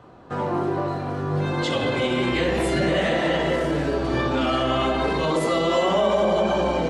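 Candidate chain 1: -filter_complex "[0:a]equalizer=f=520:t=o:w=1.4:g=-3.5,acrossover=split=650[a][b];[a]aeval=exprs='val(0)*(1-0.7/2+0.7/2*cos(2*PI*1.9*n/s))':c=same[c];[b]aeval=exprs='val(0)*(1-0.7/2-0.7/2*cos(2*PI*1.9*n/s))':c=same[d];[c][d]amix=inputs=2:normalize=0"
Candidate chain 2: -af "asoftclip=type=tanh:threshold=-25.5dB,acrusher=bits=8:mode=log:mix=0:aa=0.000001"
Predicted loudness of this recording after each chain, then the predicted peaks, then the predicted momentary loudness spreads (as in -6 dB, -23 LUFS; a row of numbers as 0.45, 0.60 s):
-27.5, -28.5 LUFS; -14.5, -26.0 dBFS; 5, 3 LU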